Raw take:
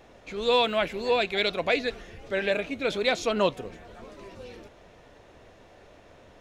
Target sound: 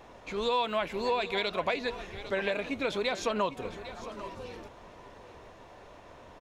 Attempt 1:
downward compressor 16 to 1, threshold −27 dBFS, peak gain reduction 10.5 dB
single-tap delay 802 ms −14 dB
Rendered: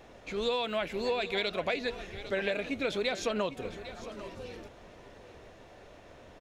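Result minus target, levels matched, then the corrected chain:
1,000 Hz band −4.5 dB
downward compressor 16 to 1, threshold −27 dBFS, peak gain reduction 10.5 dB
parametric band 1,000 Hz +8.5 dB 0.51 octaves
single-tap delay 802 ms −14 dB

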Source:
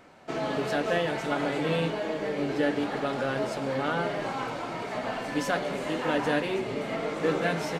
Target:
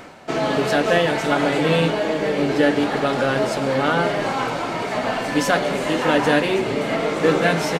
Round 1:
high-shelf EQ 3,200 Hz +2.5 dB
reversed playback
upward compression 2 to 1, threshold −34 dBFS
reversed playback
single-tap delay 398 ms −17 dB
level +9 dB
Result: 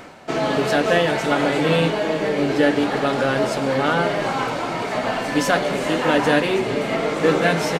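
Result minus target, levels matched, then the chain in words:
echo 167 ms early
high-shelf EQ 3,200 Hz +2.5 dB
reversed playback
upward compression 2 to 1, threshold −34 dBFS
reversed playback
single-tap delay 565 ms −17 dB
level +9 dB

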